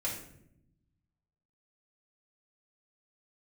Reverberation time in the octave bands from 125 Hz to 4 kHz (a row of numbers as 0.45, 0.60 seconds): 1.7, 1.4, 0.90, 0.60, 0.60, 0.45 seconds